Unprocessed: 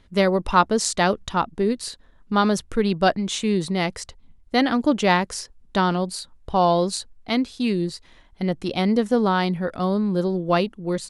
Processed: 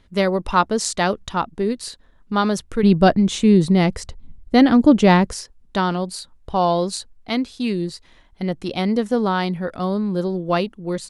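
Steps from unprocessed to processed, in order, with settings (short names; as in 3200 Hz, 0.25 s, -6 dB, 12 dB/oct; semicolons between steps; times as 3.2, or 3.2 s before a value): 2.83–5.33 low shelf 430 Hz +11.5 dB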